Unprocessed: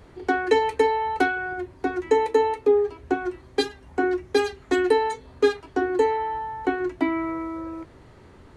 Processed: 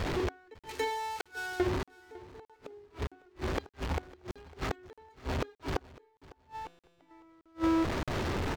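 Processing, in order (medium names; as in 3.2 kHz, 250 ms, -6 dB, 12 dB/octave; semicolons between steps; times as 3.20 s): jump at every zero crossing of -31.5 dBFS; hum notches 60/120/180/240/300/360/420/480 Hz; 0.54–1.60 s: pre-emphasis filter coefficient 0.9; inverted gate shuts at -23 dBFS, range -37 dB; 5.79–7.11 s: feedback comb 170 Hz, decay 1.7 s, mix 80%; in parallel at -4 dB: short-mantissa float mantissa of 2-bit; on the sum: distance through air 61 m; feedback delay 553 ms, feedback 20%, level -21 dB; crackling interface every 0.62 s, samples 2048, zero, from 0.59 s; decimation joined by straight lines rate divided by 2×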